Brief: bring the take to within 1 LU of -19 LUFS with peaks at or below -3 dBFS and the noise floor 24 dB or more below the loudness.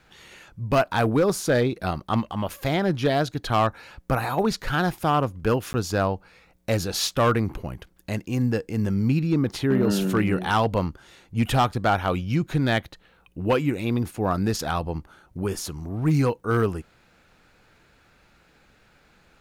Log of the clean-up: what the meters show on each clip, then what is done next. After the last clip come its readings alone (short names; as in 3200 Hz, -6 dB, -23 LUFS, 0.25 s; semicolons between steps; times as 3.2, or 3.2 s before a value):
clipped 0.5%; flat tops at -13.5 dBFS; dropouts 1; longest dropout 10 ms; loudness -24.5 LUFS; peak -13.5 dBFS; loudness target -19.0 LUFS
-> clip repair -13.5 dBFS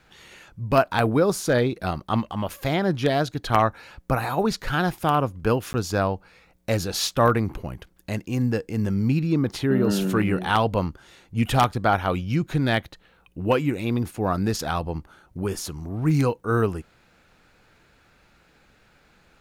clipped 0.0%; dropouts 1; longest dropout 10 ms
-> interpolate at 5.73, 10 ms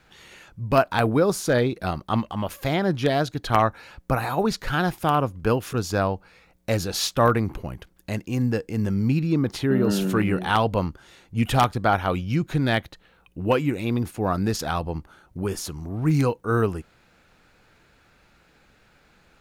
dropouts 0; loudness -24.0 LUFS; peak -4.5 dBFS; loudness target -19.0 LUFS
-> gain +5 dB; limiter -3 dBFS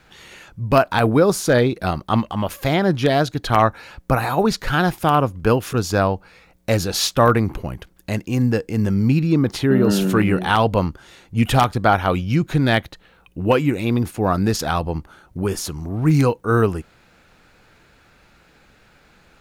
loudness -19.5 LUFS; peak -3.0 dBFS; noise floor -54 dBFS